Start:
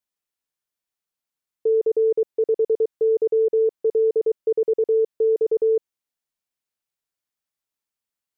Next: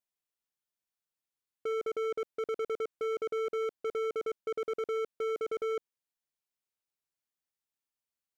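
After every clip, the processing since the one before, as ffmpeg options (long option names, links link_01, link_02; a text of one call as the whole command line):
ffmpeg -i in.wav -af "volume=25dB,asoftclip=hard,volume=-25dB,volume=-6dB" out.wav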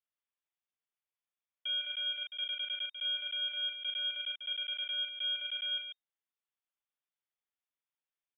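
ffmpeg -i in.wav -af "aecho=1:1:37.9|142.9:0.631|0.398,lowpass=frequency=3100:width_type=q:width=0.5098,lowpass=frequency=3100:width_type=q:width=0.6013,lowpass=frequency=3100:width_type=q:width=0.9,lowpass=frequency=3100:width_type=q:width=2.563,afreqshift=-3700,volume=-4dB" out.wav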